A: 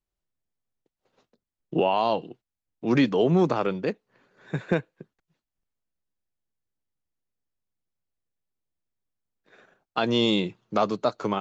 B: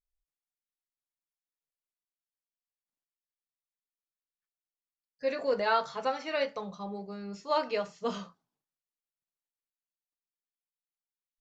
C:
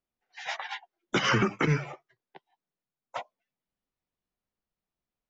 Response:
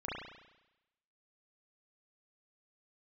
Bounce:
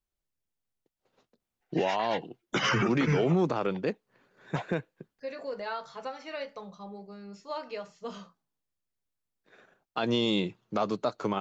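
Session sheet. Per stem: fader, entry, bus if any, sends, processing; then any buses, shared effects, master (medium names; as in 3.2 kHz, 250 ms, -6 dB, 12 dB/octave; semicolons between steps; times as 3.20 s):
-2.5 dB, 0.00 s, no send, none
-4.5 dB, 0.00 s, no send, compression 2:1, threshold -30 dBFS, peak gain reduction 5.5 dB
+1.0 dB, 1.40 s, no send, none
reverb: none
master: peak limiter -17.5 dBFS, peak gain reduction 8.5 dB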